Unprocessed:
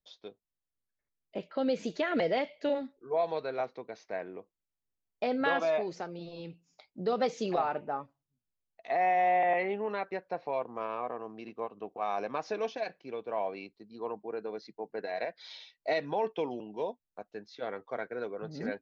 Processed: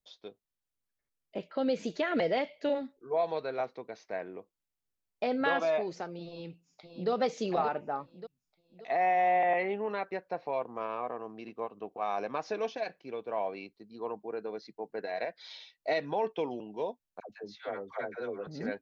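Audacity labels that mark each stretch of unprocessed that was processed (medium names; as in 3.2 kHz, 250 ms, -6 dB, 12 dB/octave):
6.250000	7.100000	echo throw 580 ms, feedback 45%, level -7 dB
17.200000	18.470000	phase dispersion lows, late by 98 ms, half as late at 630 Hz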